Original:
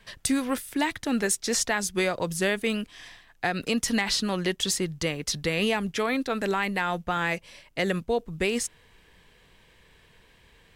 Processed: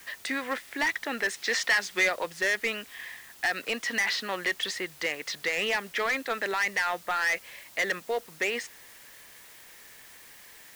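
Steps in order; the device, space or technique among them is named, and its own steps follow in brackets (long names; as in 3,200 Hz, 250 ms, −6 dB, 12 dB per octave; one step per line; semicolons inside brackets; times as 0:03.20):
drive-through speaker (band-pass filter 500–3,800 Hz; parametric band 1,900 Hz +9.5 dB 0.47 octaves; hard clipping −22 dBFS, distortion −9 dB; white noise bed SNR 20 dB)
0:01.34–0:02.10: parametric band 3,300 Hz +4.5 dB 2.2 octaves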